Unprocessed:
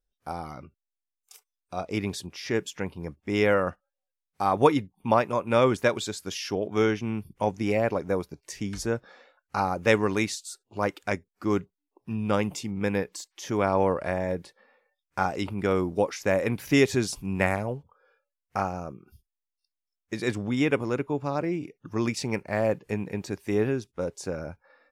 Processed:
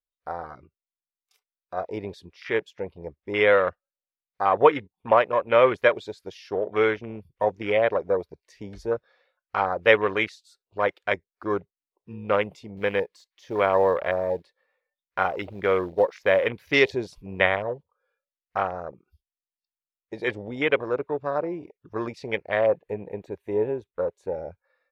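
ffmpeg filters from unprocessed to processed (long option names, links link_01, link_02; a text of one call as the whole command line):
ffmpeg -i in.wav -filter_complex "[0:a]asettb=1/sr,asplit=3[link_01][link_02][link_03];[link_01]atrim=end=12.774[link_04];[link_02]atrim=start=12.77:end=16.48,asetpts=PTS-STARTPTS,afade=type=in:duration=0.004:curve=qsin,afade=type=out:start_time=3.706:duration=0.004:curve=qsin,acrusher=bits=5:mode=log:mix=0:aa=0.000001[link_05];[link_03]atrim=start=16.476[link_06];[link_04][link_05]acrossfade=duration=0.004:curve1=hsin:curve2=qsin[link_07];[link_07][link_06]acrossfade=duration=0.004:curve1=qsin:curve2=hsin,asettb=1/sr,asplit=3[link_08][link_09][link_10];[link_08]atrim=end=22.714[link_11];[link_09]atrim=start=22.71:end=24.34,asetpts=PTS-STARTPTS,afade=type=in:duration=0.004:curve=qsin,afade=type=out:start_time=1.626:duration=0.004:curve=qsin,equalizer=frequency=5000:width_type=o:width=0.46:gain=-14.5[link_12];[link_10]atrim=start=24.336[link_13];[link_11][link_12]acrossfade=duration=0.004:curve1=hsin:curve2=qsin[link_14];[link_14][link_13]acrossfade=duration=0.004:curve1=qsin:curve2=hsin,bandreject=frequency=840:width=12,afwtdn=0.02,equalizer=frequency=125:width_type=o:width=1:gain=-5,equalizer=frequency=250:width_type=o:width=1:gain=-7,equalizer=frequency=500:width_type=o:width=1:gain=8,equalizer=frequency=1000:width_type=o:width=1:gain=4,equalizer=frequency=2000:width_type=o:width=1:gain=7,equalizer=frequency=4000:width_type=o:width=1:gain=9,equalizer=frequency=8000:width_type=o:width=1:gain=-5,volume=-2.5dB" out.wav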